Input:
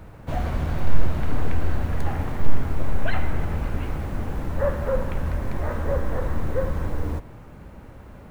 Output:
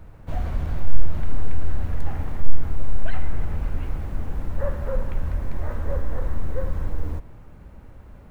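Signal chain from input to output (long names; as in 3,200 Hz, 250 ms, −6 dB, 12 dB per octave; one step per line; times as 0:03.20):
low-shelf EQ 60 Hz +11.5 dB
in parallel at −6 dB: soft clipping −5.5 dBFS, distortion −7 dB
on the sum: level −9.5 dB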